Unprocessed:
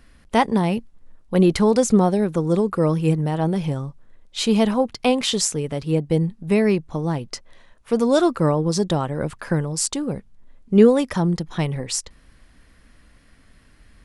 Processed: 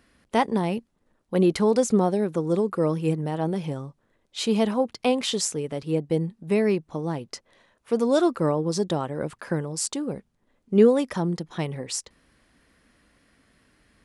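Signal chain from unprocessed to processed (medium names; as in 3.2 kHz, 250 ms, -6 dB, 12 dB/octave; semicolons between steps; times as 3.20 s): high-pass 150 Hz 6 dB/octave; peaking EQ 380 Hz +3 dB 1.6 oct; trim -5 dB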